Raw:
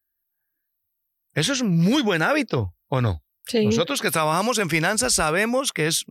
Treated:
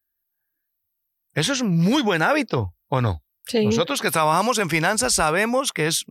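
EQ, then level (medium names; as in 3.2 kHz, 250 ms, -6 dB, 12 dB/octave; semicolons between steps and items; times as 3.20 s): dynamic bell 900 Hz, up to +5 dB, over -38 dBFS, Q 2; 0.0 dB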